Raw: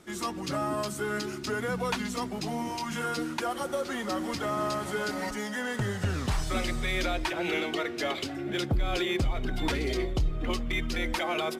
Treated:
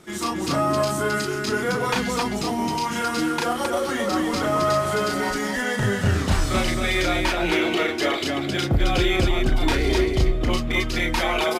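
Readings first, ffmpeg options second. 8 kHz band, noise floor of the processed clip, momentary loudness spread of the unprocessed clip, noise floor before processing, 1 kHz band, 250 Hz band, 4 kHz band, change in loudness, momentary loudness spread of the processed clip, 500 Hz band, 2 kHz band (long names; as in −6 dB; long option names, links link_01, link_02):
+8.5 dB, −28 dBFS, 4 LU, −37 dBFS, +8.5 dB, +8.0 dB, +8.0 dB, +8.5 dB, 4 LU, +8.5 dB, +8.5 dB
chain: -af "aecho=1:1:34.99|265.3:0.794|0.708,volume=5dB"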